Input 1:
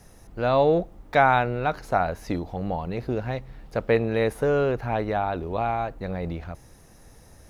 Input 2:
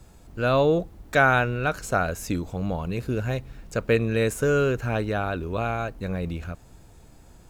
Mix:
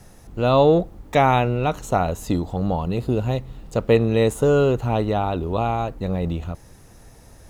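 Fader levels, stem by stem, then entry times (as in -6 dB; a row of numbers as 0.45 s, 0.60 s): +2.0 dB, -1.5 dB; 0.00 s, 0.00 s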